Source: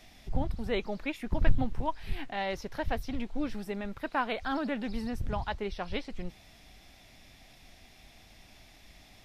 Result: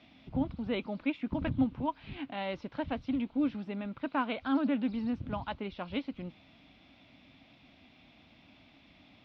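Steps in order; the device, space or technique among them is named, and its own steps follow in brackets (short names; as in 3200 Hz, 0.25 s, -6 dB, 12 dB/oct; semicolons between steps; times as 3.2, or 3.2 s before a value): guitar cabinet (speaker cabinet 110–3500 Hz, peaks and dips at 270 Hz +8 dB, 410 Hz -7 dB, 750 Hz -5 dB, 1800 Hz -9 dB)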